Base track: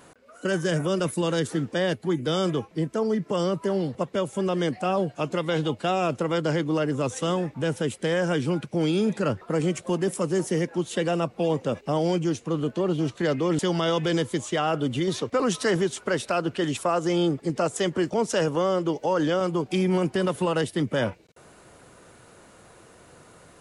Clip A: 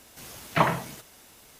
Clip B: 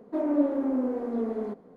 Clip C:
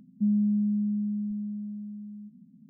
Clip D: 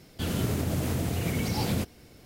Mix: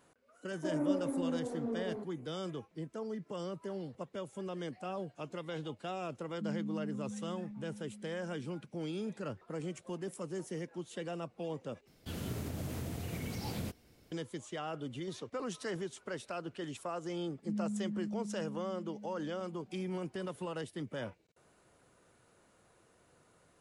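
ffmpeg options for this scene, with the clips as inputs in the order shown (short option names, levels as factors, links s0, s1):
-filter_complex "[3:a]asplit=2[s0][s1];[0:a]volume=0.168,asplit=2[s2][s3];[s2]atrim=end=11.874[s4];[4:a]atrim=end=2.25,asetpts=PTS-STARTPTS,volume=0.282[s5];[s3]atrim=start=14.116[s6];[2:a]atrim=end=1.76,asetpts=PTS-STARTPTS,volume=0.376,afade=t=in:d=0.004:c=hsin,afade=t=out:st=1.756:d=0.004:c=hsin,adelay=500[s7];[s0]atrim=end=2.69,asetpts=PTS-STARTPTS,volume=0.188,afade=t=in:d=0.004:c=hsin,afade=t=out:st=2.686:d=0.004:c=hsin,adelay=6200[s8];[s1]atrim=end=2.69,asetpts=PTS-STARTPTS,volume=0.237,afade=t=in:d=0.004:c=hsin,afade=t=out:st=2.686:d=0.004:c=hsin,adelay=17260[s9];[s4][s5]acrossfade=d=0.004:c1=hsin:c2=hsin[s10];[s10][s6]acrossfade=d=0.004:c1=hsin:c2=hsin[s11];[s11][s7][s8][s9]amix=inputs=4:normalize=0"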